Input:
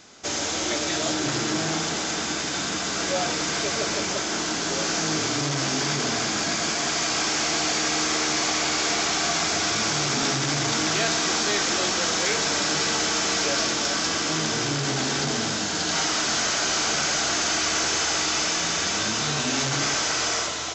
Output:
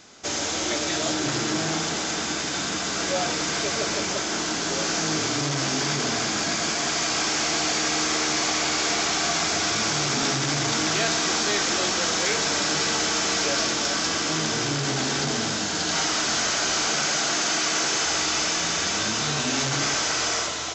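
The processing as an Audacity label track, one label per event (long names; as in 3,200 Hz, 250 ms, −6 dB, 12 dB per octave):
16.870000	18.060000	high-pass filter 110 Hz 24 dB per octave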